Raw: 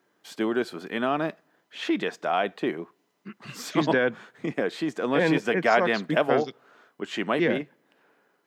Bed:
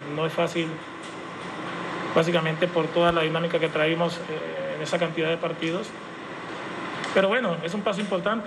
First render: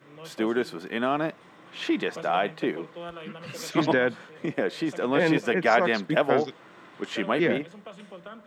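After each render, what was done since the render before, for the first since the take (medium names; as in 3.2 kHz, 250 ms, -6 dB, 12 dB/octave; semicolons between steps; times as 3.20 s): add bed -18 dB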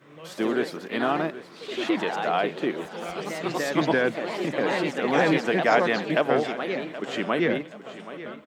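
ever faster or slower copies 91 ms, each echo +2 st, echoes 3, each echo -6 dB; feedback delay 776 ms, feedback 38%, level -15 dB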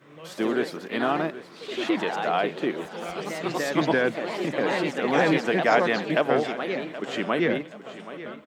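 no audible change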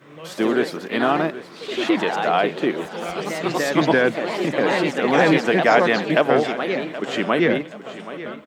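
trim +5.5 dB; peak limiter -3 dBFS, peak gain reduction 2 dB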